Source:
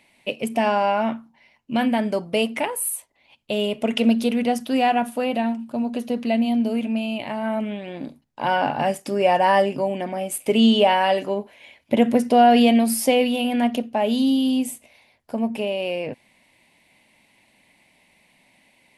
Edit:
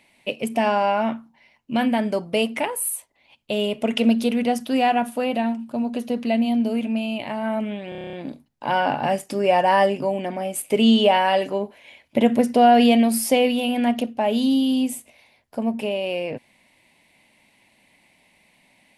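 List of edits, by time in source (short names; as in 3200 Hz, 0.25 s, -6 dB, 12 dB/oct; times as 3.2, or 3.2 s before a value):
7.89 stutter 0.03 s, 9 plays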